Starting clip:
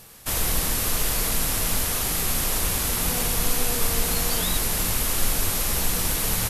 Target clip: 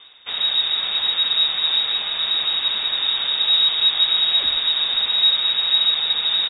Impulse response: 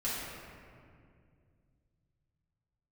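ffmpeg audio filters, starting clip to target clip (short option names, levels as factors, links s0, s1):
-filter_complex "[0:a]equalizer=f=170:w=1.4:g=10,areverse,acompressor=mode=upward:threshold=0.0282:ratio=2.5,areverse,aecho=1:1:484:0.473,asplit=2[s0][s1];[1:a]atrim=start_sample=2205,asetrate=74970,aresample=44100[s2];[s1][s2]afir=irnorm=-1:irlink=0,volume=0.335[s3];[s0][s3]amix=inputs=2:normalize=0,lowpass=f=3200:t=q:w=0.5098,lowpass=f=3200:t=q:w=0.6013,lowpass=f=3200:t=q:w=0.9,lowpass=f=3200:t=q:w=2.563,afreqshift=-3800,volume=0.841"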